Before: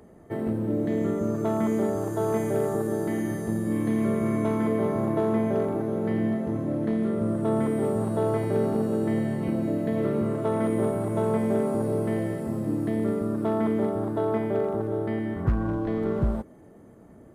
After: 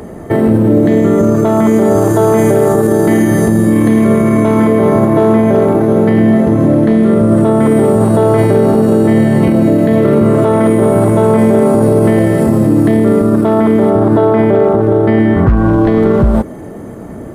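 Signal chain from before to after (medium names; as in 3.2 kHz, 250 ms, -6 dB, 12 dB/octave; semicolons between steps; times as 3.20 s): 13.90–15.57 s: treble shelf 6.6 kHz -9.5 dB; loudness maximiser +24 dB; trim -1 dB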